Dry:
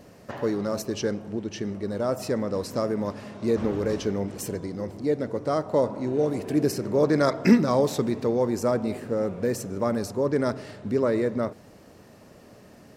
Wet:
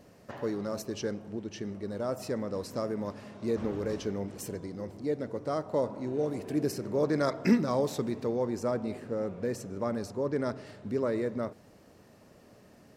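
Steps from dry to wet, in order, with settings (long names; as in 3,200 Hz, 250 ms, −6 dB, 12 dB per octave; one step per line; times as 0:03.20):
0:08.36–0:10.66: high-shelf EQ 11,000 Hz −10.5 dB
level −6.5 dB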